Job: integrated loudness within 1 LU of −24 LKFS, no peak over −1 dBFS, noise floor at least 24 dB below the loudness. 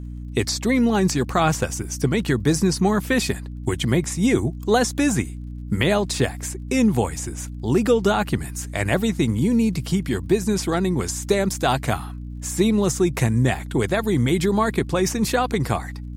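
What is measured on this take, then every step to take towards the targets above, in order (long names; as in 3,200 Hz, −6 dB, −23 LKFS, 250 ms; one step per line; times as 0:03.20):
crackle rate 37 per second; mains hum 60 Hz; hum harmonics up to 300 Hz; level of the hum −30 dBFS; integrated loudness −21.5 LKFS; sample peak −5.5 dBFS; target loudness −24.0 LKFS
→ click removal
mains-hum notches 60/120/180/240/300 Hz
level −2.5 dB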